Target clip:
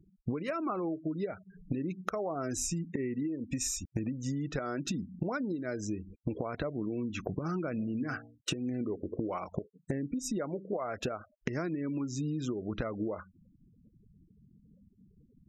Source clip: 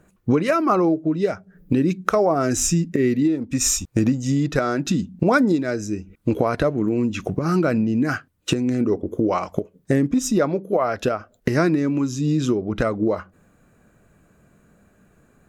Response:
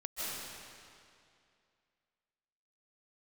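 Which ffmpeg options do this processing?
-filter_complex "[0:a]asplit=3[s0][s1][s2];[s0]afade=t=out:st=7.78:d=0.02[s3];[s1]bandreject=f=58.2:t=h:w=4,bandreject=f=116.4:t=h:w=4,bandreject=f=174.6:t=h:w=4,bandreject=f=232.8:t=h:w=4,bandreject=f=291:t=h:w=4,bandreject=f=349.2:t=h:w=4,bandreject=f=407.4:t=h:w=4,bandreject=f=465.6:t=h:w=4,bandreject=f=523.8:t=h:w=4,bandreject=f=582:t=h:w=4,bandreject=f=640.2:t=h:w=4,bandreject=f=698.4:t=h:w=4,bandreject=f=756.6:t=h:w=4,bandreject=f=814.8:t=h:w=4,bandreject=f=873:t=h:w=4,bandreject=f=931.2:t=h:w=4,bandreject=f=989.4:t=h:w=4,afade=t=in:st=7.78:d=0.02,afade=t=out:st=8.5:d=0.02[s4];[s2]afade=t=in:st=8.5:d=0.02[s5];[s3][s4][s5]amix=inputs=3:normalize=0,acompressor=threshold=0.0398:ratio=10,afftfilt=real='re*gte(hypot(re,im),0.00631)':imag='im*gte(hypot(re,im),0.00631)':win_size=1024:overlap=0.75,volume=0.708"

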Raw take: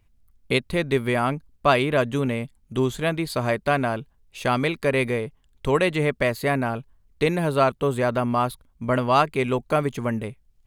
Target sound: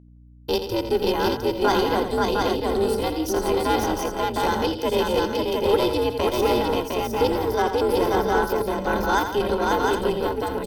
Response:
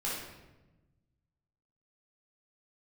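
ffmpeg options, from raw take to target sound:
-filter_complex "[0:a]agate=range=0.0708:threshold=0.00282:ratio=16:detection=peak,bandreject=f=970:w=10,tremolo=f=290:d=0.788,equalizer=f=1700:t=o:w=0.92:g=-12.5,aecho=1:1:2.5:0.62,acrossover=split=180|3000[s0][s1][s2];[s0]acompressor=threshold=0.0251:ratio=10[s3];[s3][s1][s2]amix=inputs=3:normalize=0,asplit=2[s4][s5];[s5]asoftclip=type=tanh:threshold=0.0562,volume=0.668[s6];[s4][s6]amix=inputs=2:normalize=0,afreqshift=-95,asetrate=58866,aresample=44100,atempo=0.749154,aeval=exprs='val(0)+0.00631*(sin(2*PI*60*n/s)+sin(2*PI*2*60*n/s)/2+sin(2*PI*3*60*n/s)/3+sin(2*PI*4*60*n/s)/4+sin(2*PI*5*60*n/s)/5)':c=same,lowshelf=f=110:g=-7.5,asplit=2[s7][s8];[s8]aecho=0:1:85|164|534|708|771|789:0.355|0.224|0.708|0.708|0.2|0.266[s9];[s7][s9]amix=inputs=2:normalize=0"

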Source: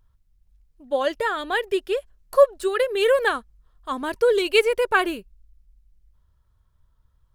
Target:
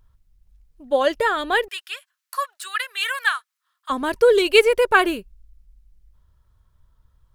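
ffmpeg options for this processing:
-filter_complex "[0:a]asettb=1/sr,asplit=3[s0][s1][s2];[s0]atrim=end=1.684[s3];[s1]atrim=start=1.68:end=3.9,asetpts=PTS-STARTPTS,afade=t=in:d=0.004:c=qsin,afade=t=out:st=2.216:d=0.004:c=qsin,highpass=f=1200:w=0.5412,highpass=f=1200:w=1.3066[s4];[s2]atrim=start=3.896[s5];[s3][s4]acrossfade=d=0.004:c1=hsin:c2=qsin[s6];[s6][s5]acrossfade=d=0.004:c1=qsin:c2=hsin,volume=1.58"

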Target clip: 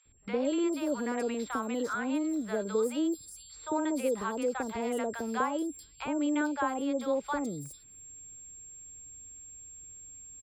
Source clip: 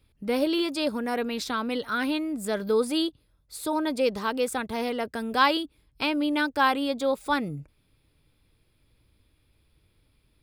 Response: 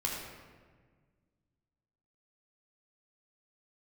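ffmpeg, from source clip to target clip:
-filter_complex "[0:a]acrossover=split=240|2100[s0][s1][s2];[s2]acompressor=threshold=0.00631:ratio=6[s3];[s0][s1][s3]amix=inputs=3:normalize=0,aeval=exprs='val(0)+0.00501*sin(2*PI*7500*n/s)':c=same,acrossover=split=240|1300[s4][s5][s6];[s4]acompressor=threshold=0.00562:ratio=4[s7];[s5]acompressor=threshold=0.0501:ratio=4[s8];[s6]acompressor=threshold=0.00794:ratio=4[s9];[s7][s8][s9]amix=inputs=3:normalize=0,acrossover=split=790|4700[s10][s11][s12];[s10]adelay=50[s13];[s12]adelay=450[s14];[s13][s11][s14]amix=inputs=3:normalize=0"

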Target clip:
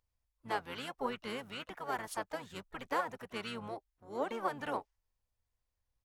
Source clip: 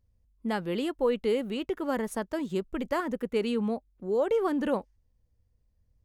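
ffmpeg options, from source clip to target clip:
-filter_complex "[0:a]lowshelf=f=570:t=q:w=1.5:g=-14,asplit=4[s0][s1][s2][s3];[s1]asetrate=22050,aresample=44100,atempo=2,volume=0.562[s4];[s2]asetrate=35002,aresample=44100,atempo=1.25992,volume=0.282[s5];[s3]asetrate=58866,aresample=44100,atempo=0.749154,volume=0.141[s6];[s0][s4][s5][s6]amix=inputs=4:normalize=0,volume=0.596"

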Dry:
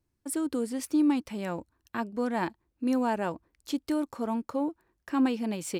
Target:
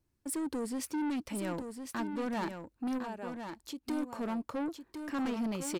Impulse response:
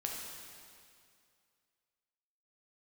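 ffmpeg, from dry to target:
-filter_complex "[0:a]asplit=3[s0][s1][s2];[s0]afade=t=out:st=2.97:d=0.02[s3];[s1]acompressor=threshold=0.00447:ratio=2,afade=t=in:st=2.97:d=0.02,afade=t=out:st=3.82:d=0.02[s4];[s2]afade=t=in:st=3.82:d=0.02[s5];[s3][s4][s5]amix=inputs=3:normalize=0,asoftclip=type=tanh:threshold=0.0282,aecho=1:1:1057:0.447"

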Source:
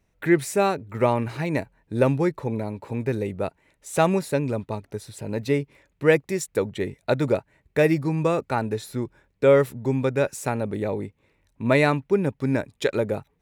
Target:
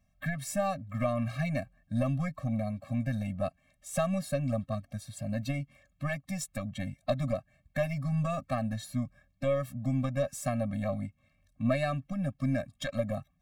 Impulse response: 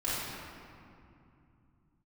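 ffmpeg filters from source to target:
-af "acompressor=threshold=0.0891:ratio=6,aeval=exprs='0.794*(cos(1*acos(clip(val(0)/0.794,-1,1)))-cos(1*PI/2))+0.0282*(cos(2*acos(clip(val(0)/0.794,-1,1)))-cos(2*PI/2))+0.0447*(cos(3*acos(clip(val(0)/0.794,-1,1)))-cos(3*PI/2))+0.0398*(cos(6*acos(clip(val(0)/0.794,-1,1)))-cos(6*PI/2))':c=same,afftfilt=real='re*eq(mod(floor(b*sr/1024/260),2),0)':imag='im*eq(mod(floor(b*sr/1024/260),2),0)':win_size=1024:overlap=0.75"

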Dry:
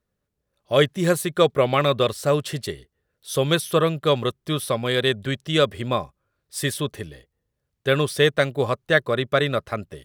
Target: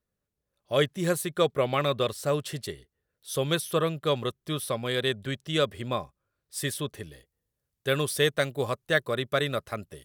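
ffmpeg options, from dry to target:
-af "asetnsamples=n=441:p=0,asendcmd='7.07 equalizer g 10.5',equalizer=f=14000:w=0.33:g=3.5,volume=0.473"

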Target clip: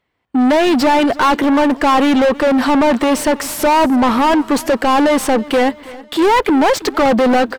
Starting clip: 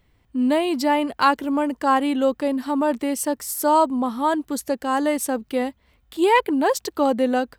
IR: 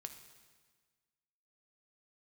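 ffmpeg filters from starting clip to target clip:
-filter_complex "[0:a]agate=range=0.0501:threshold=0.002:ratio=16:detection=peak,asplit=2[s0][s1];[s1]highpass=f=720:p=1,volume=50.1,asoftclip=type=tanh:threshold=0.562[s2];[s0][s2]amix=inputs=2:normalize=0,lowpass=f=1900:p=1,volume=0.501,aecho=1:1:326|652|978|1304:0.1|0.047|0.0221|0.0104"

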